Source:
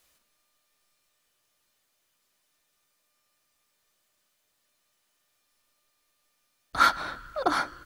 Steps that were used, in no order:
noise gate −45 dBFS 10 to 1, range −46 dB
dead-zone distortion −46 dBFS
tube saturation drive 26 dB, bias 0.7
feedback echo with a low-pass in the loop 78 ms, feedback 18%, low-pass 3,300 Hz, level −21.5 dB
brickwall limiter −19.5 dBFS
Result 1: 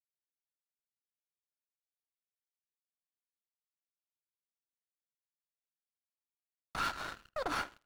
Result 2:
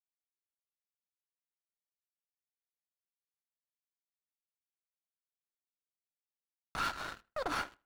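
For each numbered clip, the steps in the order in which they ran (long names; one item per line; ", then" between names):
noise gate, then brickwall limiter, then tube saturation, then dead-zone distortion, then feedback echo with a low-pass in the loop
brickwall limiter, then tube saturation, then noise gate, then dead-zone distortion, then feedback echo with a low-pass in the loop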